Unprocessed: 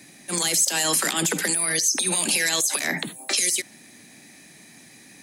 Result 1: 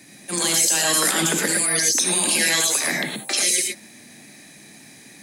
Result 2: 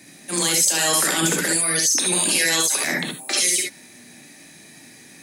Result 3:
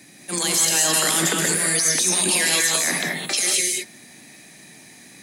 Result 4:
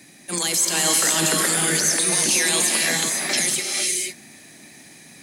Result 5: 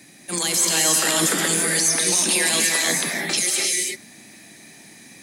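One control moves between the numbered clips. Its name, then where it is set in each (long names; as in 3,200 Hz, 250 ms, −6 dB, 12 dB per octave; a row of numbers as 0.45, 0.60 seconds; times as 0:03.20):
reverb whose tail is shaped and stops, gate: 140, 90, 240, 530, 360 milliseconds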